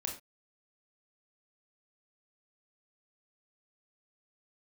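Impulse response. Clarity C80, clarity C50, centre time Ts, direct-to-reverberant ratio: 13.5 dB, 8.0 dB, 22 ms, 0.5 dB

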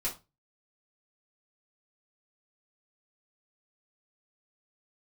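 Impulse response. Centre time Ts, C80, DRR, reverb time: 19 ms, 20.0 dB, -7.0 dB, 0.25 s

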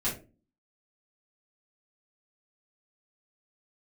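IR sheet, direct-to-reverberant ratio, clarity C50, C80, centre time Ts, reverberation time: -9.0 dB, 8.5 dB, 14.5 dB, 26 ms, 0.35 s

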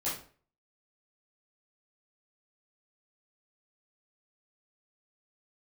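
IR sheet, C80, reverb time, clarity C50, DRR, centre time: 10.5 dB, 0.45 s, 5.0 dB, -10.0 dB, 37 ms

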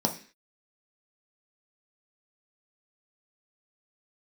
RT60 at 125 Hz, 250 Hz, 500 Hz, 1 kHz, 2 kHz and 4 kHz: 0.35 s, 0.45 s, 0.40 s, 0.40 s, 0.60 s, n/a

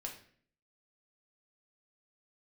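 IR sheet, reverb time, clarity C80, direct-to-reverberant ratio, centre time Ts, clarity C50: 0.55 s, 12.0 dB, 0.0 dB, 20 ms, 8.0 dB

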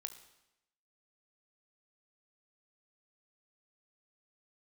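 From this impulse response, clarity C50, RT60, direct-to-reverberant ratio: 11.0 dB, 0.90 s, 9.0 dB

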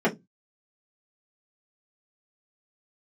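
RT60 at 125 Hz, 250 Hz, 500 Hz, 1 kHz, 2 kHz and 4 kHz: 0.35, 0.25, 0.20, 0.15, 0.10, 0.15 s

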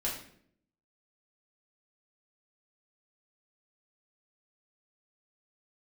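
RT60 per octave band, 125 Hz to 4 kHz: 0.85, 0.85, 0.70, 0.55, 0.55, 0.50 s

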